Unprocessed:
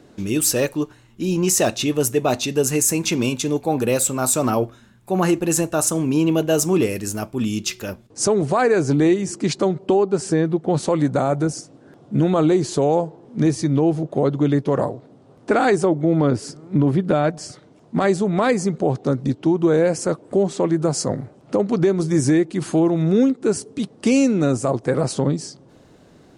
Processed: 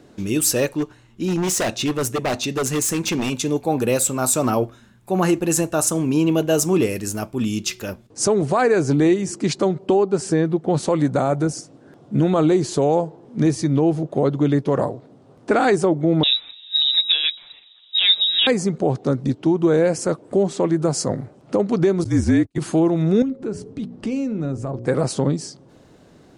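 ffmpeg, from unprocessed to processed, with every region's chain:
-filter_complex "[0:a]asettb=1/sr,asplit=3[s0][s1][s2];[s0]atrim=end=0.664[s3];[s1]atrim=start=0.66:end=3.34,asetpts=PTS-STARTPTS,afade=t=in:d=0.004:c=qsin,afade=t=out:st=2.676:d=0.004:c=qsin,highshelf=f=12000:g=-10,aeval=exprs='0.168*(abs(mod(val(0)/0.168+3,4)-2)-1)':c=same[s4];[s2]atrim=start=3.336[s5];[s3][s4]acrossfade=d=0.004:c1=hsin:c2=qsin[s6];[s6][s5]acrossfade=d=0.004:c1=qsin:c2=hsin,asettb=1/sr,asplit=3[s7][s8][s9];[s7]atrim=end=16.234[s10];[s8]atrim=start=16.23:end=18.47,asetpts=PTS-STARTPTS,afade=t=in:d=0.004:c=qsin,afade=t=out:st=2.236:d=0.004:c=qsin,lowpass=f=3400:t=q:w=0.5098,lowpass=f=3400:t=q:w=0.6013,lowpass=f=3400:t=q:w=0.9,lowpass=f=3400:t=q:w=2.563,afreqshift=-4000,aecho=1:1:6.9:0.4,atrim=end_sample=98784[s11];[s9]atrim=start=18.466[s12];[s10][s11]acrossfade=d=0.004:c1=hsin:c2=qsin[s13];[s13][s12]acrossfade=d=0.004:c1=qsin:c2=hsin,asettb=1/sr,asplit=3[s14][s15][s16];[s14]atrim=end=22.044[s17];[s15]atrim=start=22.04:end=22.58,asetpts=PTS-STARTPTS,afade=t=in:d=0.004:c=qsin,afade=t=out:st=0.536:d=0.004:c=qsin,acrossover=split=4600[s18][s19];[s19]acompressor=threshold=0.0141:ratio=4:attack=1:release=60[s20];[s18][s20]amix=inputs=2:normalize=0,agate=range=0.0126:threshold=0.0562:ratio=16:release=100:detection=peak,afreqshift=-47[s21];[s16]atrim=start=22.576[s22];[s17][s21]acrossfade=d=0.004:c1=hsin:c2=qsin[s23];[s23][s22]acrossfade=d=0.004:c1=qsin:c2=hsin,asettb=1/sr,asplit=3[s24][s25][s26];[s24]atrim=end=23.224[s27];[s25]atrim=start=23.22:end=24.86,asetpts=PTS-STARTPTS,afade=t=in:d=0.004:c=qsin,afade=t=out:st=1.636:d=0.004:c=qsin,aemphasis=mode=reproduction:type=bsi,bandreject=f=60:t=h:w=6,bandreject=f=120:t=h:w=6,bandreject=f=180:t=h:w=6,bandreject=f=240:t=h:w=6,bandreject=f=300:t=h:w=6,bandreject=f=360:t=h:w=6,bandreject=f=420:t=h:w=6,bandreject=f=480:t=h:w=6,bandreject=f=540:t=h:w=6,bandreject=f=600:t=h:w=6,acompressor=threshold=0.0316:ratio=2:attack=3.2:release=140:knee=1:detection=peak[s28];[s26]atrim=start=24.856[s29];[s27][s28]acrossfade=d=0.004:c1=hsin:c2=qsin[s30];[s30][s29]acrossfade=d=0.004:c1=qsin:c2=hsin"

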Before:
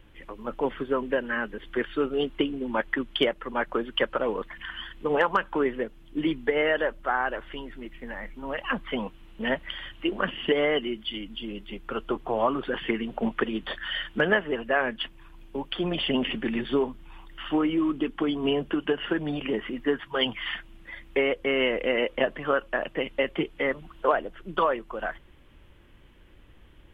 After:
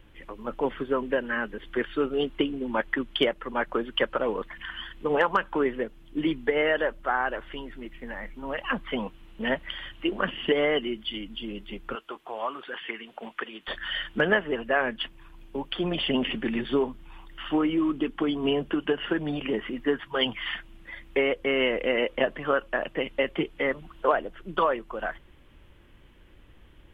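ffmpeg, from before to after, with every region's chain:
-filter_complex "[0:a]asettb=1/sr,asplit=3[s0][s1][s2];[s0]atrim=end=11.954[s3];[s1]atrim=start=11.95:end=13.68,asetpts=PTS-STARTPTS,afade=t=in:d=0.004:c=qsin,afade=t=out:st=1.726:d=0.004:c=qsin,highpass=f=1500:p=1,acrossover=split=3800[s4][s5];[s5]acompressor=threshold=0.00141:ratio=4:attack=1:release=60[s6];[s4][s6]amix=inputs=2:normalize=0[s7];[s2]atrim=start=13.676[s8];[s3][s7]acrossfade=d=0.004:c1=hsin:c2=qsin[s9];[s9][s8]acrossfade=d=0.004:c1=qsin:c2=hsin"

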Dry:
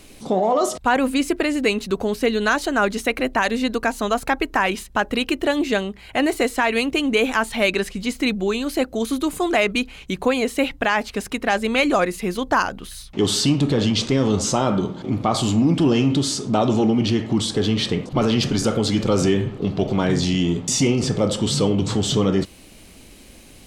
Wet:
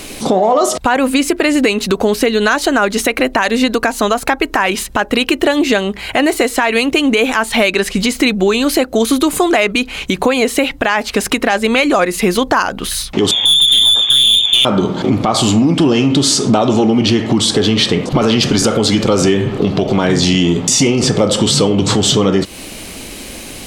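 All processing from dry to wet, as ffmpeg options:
-filter_complex "[0:a]asettb=1/sr,asplit=3[s0][s1][s2];[s0]atrim=end=13.314[s3];[s1]atrim=start=13.31:end=14.65,asetpts=PTS-STARTPTS,afade=t=in:d=0.004:c=qsin,afade=t=out:st=1.336:d=0.004:c=qsin,tiltshelf=f=900:g=8.5,lowpass=f=3100:t=q:w=0.5098,lowpass=f=3100:t=q:w=0.6013,lowpass=f=3100:t=q:w=0.9,lowpass=f=3100:t=q:w=2.563,afreqshift=-3700,aeval=exprs='(tanh(3.98*val(0)+0.2)-tanh(0.2))/3.98':c=same[s4];[s2]atrim=start=14.646[s5];[s3][s4]acrossfade=d=0.004:c1=hsin:c2=qsin[s6];[s6][s5]acrossfade=d=0.004:c1=qsin:c2=hsin,lowshelf=f=190:g=-7.5,acompressor=threshold=0.0447:ratio=6,alimiter=level_in=8.91:limit=0.891:release=50:level=0:latency=1,volume=0.891"

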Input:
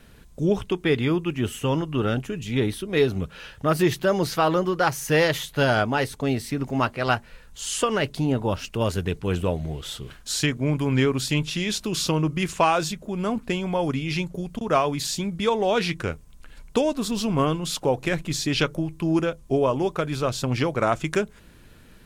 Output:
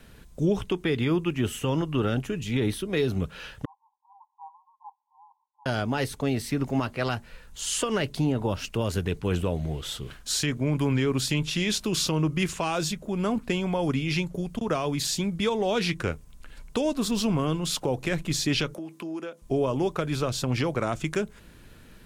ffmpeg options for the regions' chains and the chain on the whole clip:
-filter_complex "[0:a]asettb=1/sr,asplit=3[s0][s1][s2];[s0]atrim=end=3.654[s3];[s1]atrim=start=3.65:end=5.66,asetpts=PTS-STARTPTS,afade=t=in:d=0.004:c=qsin,afade=t=out:st=2.006:d=0.004:c=qsin,asuperpass=centerf=910:order=20:qfactor=3.1,aderivative[s4];[s2]atrim=start=5.656[s5];[s3][s4]acrossfade=d=0.004:c1=hsin:c2=qsin[s6];[s6][s5]acrossfade=d=0.004:c1=qsin:c2=hsin,asettb=1/sr,asplit=3[s7][s8][s9];[s7]atrim=end=18.744[s10];[s8]atrim=start=18.74:end=19.42,asetpts=PTS-STARTPTS,afade=t=in:d=0.004:c=qsin,afade=t=out:st=0.676:d=0.004:c=qsin,highpass=f=220:w=0.5412,highpass=f=220:w=1.3066,acompressor=threshold=0.0178:ratio=3:attack=3.2:release=140:knee=1:detection=peak[s11];[s9]atrim=start=19.416[s12];[s10][s11]acrossfade=d=0.004:c1=hsin:c2=qsin[s13];[s13][s12]acrossfade=d=0.004:c1=qsin:c2=hsin,acrossover=split=380|3000[s14][s15][s16];[s15]acompressor=threshold=0.0562:ratio=6[s17];[s14][s17][s16]amix=inputs=3:normalize=0,alimiter=limit=0.168:level=0:latency=1:release=79"

